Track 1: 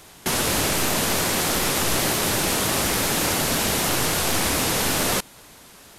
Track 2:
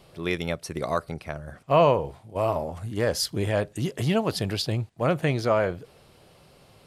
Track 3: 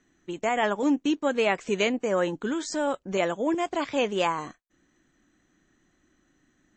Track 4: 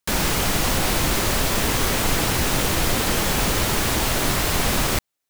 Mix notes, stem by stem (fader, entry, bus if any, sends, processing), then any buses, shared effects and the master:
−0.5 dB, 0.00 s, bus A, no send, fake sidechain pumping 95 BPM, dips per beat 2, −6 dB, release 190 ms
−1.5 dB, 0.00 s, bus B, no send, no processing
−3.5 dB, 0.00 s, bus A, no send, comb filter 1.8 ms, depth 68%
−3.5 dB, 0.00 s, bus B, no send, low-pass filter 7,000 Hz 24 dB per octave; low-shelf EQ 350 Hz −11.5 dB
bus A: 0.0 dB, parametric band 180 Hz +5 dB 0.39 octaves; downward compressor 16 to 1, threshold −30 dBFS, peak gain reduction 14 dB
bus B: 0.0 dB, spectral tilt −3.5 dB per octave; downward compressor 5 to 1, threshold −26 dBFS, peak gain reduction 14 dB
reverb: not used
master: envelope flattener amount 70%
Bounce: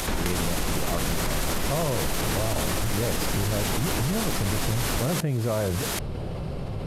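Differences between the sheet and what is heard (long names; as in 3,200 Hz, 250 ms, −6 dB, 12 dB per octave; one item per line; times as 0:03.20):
stem 1 −0.5 dB → +7.5 dB
stem 3: muted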